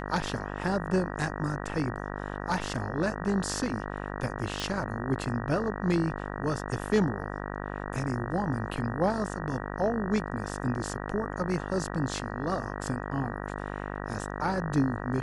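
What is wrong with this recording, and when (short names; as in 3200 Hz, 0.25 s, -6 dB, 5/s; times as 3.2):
buzz 50 Hz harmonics 38 -36 dBFS
4.6 pop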